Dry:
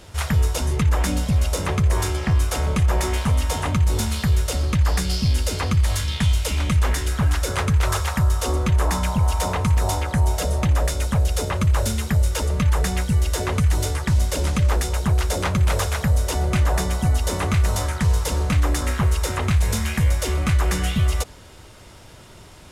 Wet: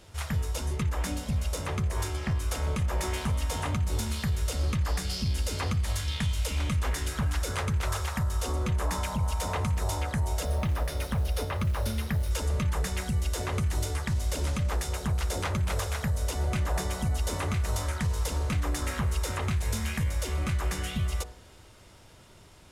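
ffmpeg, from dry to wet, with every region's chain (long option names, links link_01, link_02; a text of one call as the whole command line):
ffmpeg -i in.wav -filter_complex "[0:a]asettb=1/sr,asplit=3[link_01][link_02][link_03];[link_01]atrim=end=10.454[link_04];[link_02]atrim=start=10.45:end=12.31,asetpts=PTS-STARTPTS,afade=type=in:duration=0.004:curve=qsin,afade=type=out:start_time=1.856:duration=0.004:curve=qsin,equalizer=frequency=7400:width_type=o:width=0.42:gain=-14.5,acrusher=bits=8:mode=log:mix=0:aa=0.000001[link_05];[link_03]atrim=start=12.306[link_06];[link_04][link_05]acrossfade=duration=0.004:curve1=hsin:curve2=qsin[link_07];[link_07][link_06]acrossfade=duration=0.004:curve1=qsin:curve2=hsin,bandreject=frequency=61.23:width_type=h:width=4,bandreject=frequency=122.46:width_type=h:width=4,bandreject=frequency=183.69:width_type=h:width=4,bandreject=frequency=244.92:width_type=h:width=4,bandreject=frequency=306.15:width_type=h:width=4,bandreject=frequency=367.38:width_type=h:width=4,bandreject=frequency=428.61:width_type=h:width=4,bandreject=frequency=489.84:width_type=h:width=4,bandreject=frequency=551.07:width_type=h:width=4,bandreject=frequency=612.3:width_type=h:width=4,bandreject=frequency=673.53:width_type=h:width=4,bandreject=frequency=734.76:width_type=h:width=4,bandreject=frequency=795.99:width_type=h:width=4,bandreject=frequency=857.22:width_type=h:width=4,bandreject=frequency=918.45:width_type=h:width=4,bandreject=frequency=979.68:width_type=h:width=4,bandreject=frequency=1040.91:width_type=h:width=4,bandreject=frequency=1102.14:width_type=h:width=4,bandreject=frequency=1163.37:width_type=h:width=4,bandreject=frequency=1224.6:width_type=h:width=4,bandreject=frequency=1285.83:width_type=h:width=4,bandreject=frequency=1347.06:width_type=h:width=4,bandreject=frequency=1408.29:width_type=h:width=4,bandreject=frequency=1469.52:width_type=h:width=4,bandreject=frequency=1530.75:width_type=h:width=4,bandreject=frequency=1591.98:width_type=h:width=4,bandreject=frequency=1653.21:width_type=h:width=4,bandreject=frequency=1714.44:width_type=h:width=4,bandreject=frequency=1775.67:width_type=h:width=4,bandreject=frequency=1836.9:width_type=h:width=4,bandreject=frequency=1898.13:width_type=h:width=4,bandreject=frequency=1959.36:width_type=h:width=4,bandreject=frequency=2020.59:width_type=h:width=4,dynaudnorm=framelen=310:gausssize=17:maxgain=6dB,alimiter=limit=-11.5dB:level=0:latency=1:release=269,volume=-8.5dB" out.wav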